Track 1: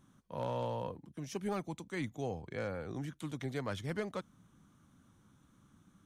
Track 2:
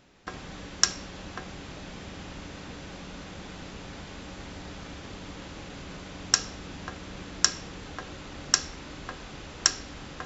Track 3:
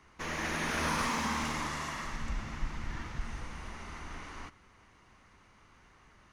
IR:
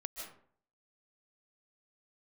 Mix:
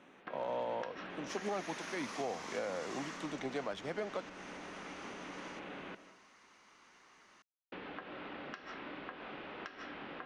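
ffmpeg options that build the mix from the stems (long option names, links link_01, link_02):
-filter_complex "[0:a]equalizer=frequency=680:width_type=o:width=0.65:gain=7.5,volume=1.5dB[link_01];[1:a]lowpass=frequency=2900:width=0.5412,lowpass=frequency=2900:width=1.3066,volume=-0.5dB,asplit=3[link_02][link_03][link_04];[link_02]atrim=end=5.95,asetpts=PTS-STARTPTS,afade=type=out:start_time=5.946:duration=0.004:curve=hsin[link_05];[link_03]atrim=start=5.95:end=7.72,asetpts=PTS-STARTPTS,volume=0[link_06];[link_04]atrim=start=7.72,asetpts=PTS-STARTPTS,afade=type=in:duration=0.004:curve=hsin[link_07];[link_05][link_06][link_07]concat=n=3:v=0:a=1,asplit=2[link_08][link_09];[link_09]volume=-9.5dB[link_10];[2:a]highshelf=frequency=4800:gain=12,adelay=1100,volume=-1.5dB[link_11];[link_08][link_11]amix=inputs=2:normalize=0,acompressor=threshold=-42dB:ratio=6,volume=0dB[link_12];[3:a]atrim=start_sample=2205[link_13];[link_10][link_13]afir=irnorm=-1:irlink=0[link_14];[link_01][link_12][link_14]amix=inputs=3:normalize=0,acrossover=split=210 7500:gain=0.0631 1 0.112[link_15][link_16][link_17];[link_15][link_16][link_17]amix=inputs=3:normalize=0,alimiter=level_in=4dB:limit=-24dB:level=0:latency=1:release=173,volume=-4dB"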